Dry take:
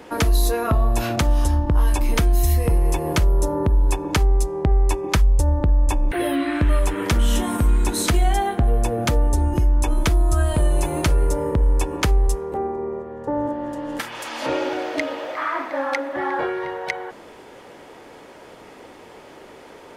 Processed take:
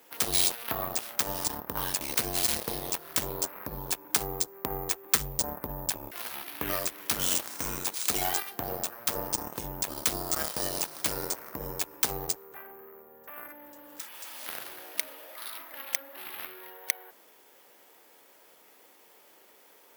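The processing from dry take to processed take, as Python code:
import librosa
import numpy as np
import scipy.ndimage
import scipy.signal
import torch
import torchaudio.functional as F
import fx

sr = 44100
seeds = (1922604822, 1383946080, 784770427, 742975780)

y = fx.cheby_harmonics(x, sr, harmonics=(3, 7), levels_db=(-9, -29), full_scale_db=-8.5)
y = np.repeat(y[::3], 3)[:len(y)]
y = fx.riaa(y, sr, side='recording')
y = F.gain(torch.from_numpy(y), -6.5).numpy()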